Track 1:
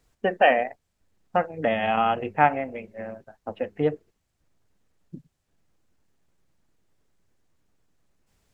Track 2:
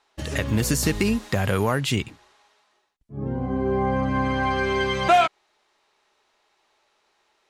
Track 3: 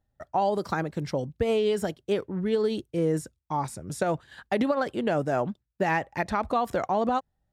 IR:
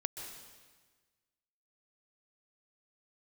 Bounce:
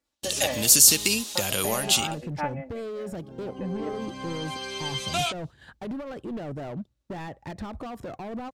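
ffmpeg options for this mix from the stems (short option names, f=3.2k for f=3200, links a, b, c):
-filter_complex "[0:a]highpass=f=610:p=1,aecho=1:1:3.5:0.9,volume=-14.5dB[a];[1:a]agate=range=-24dB:threshold=-45dB:ratio=16:detection=peak,highpass=f=800:p=1,aexciter=amount=6.2:drive=5.7:freq=2.7k,adelay=50,volume=-6dB,afade=t=out:st=1.66:d=0.62:silence=0.446684[b];[2:a]acompressor=threshold=-32dB:ratio=2.5,asoftclip=type=hard:threshold=-34.5dB,adelay=1300,volume=-4dB[c];[a][b][c]amix=inputs=3:normalize=0,lowshelf=f=490:g=10.5"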